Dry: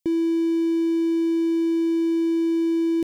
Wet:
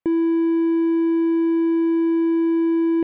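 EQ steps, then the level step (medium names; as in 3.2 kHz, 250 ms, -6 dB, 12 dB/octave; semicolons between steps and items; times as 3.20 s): low-pass 1.8 kHz 12 dB/octave; peaking EQ 1.2 kHz +11 dB 2.3 oct; 0.0 dB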